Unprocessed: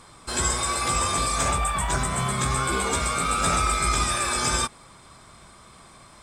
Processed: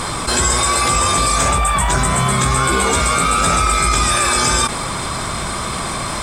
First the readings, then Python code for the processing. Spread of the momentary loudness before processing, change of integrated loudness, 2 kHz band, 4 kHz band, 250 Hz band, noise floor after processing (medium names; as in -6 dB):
3 LU, +8.0 dB, +9.5 dB, +9.5 dB, +9.5 dB, -23 dBFS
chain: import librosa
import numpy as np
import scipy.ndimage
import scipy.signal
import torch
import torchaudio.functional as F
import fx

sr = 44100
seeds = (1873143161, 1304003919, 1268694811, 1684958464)

y = fx.env_flatten(x, sr, amount_pct=70)
y = F.gain(torch.from_numpy(y), 6.5).numpy()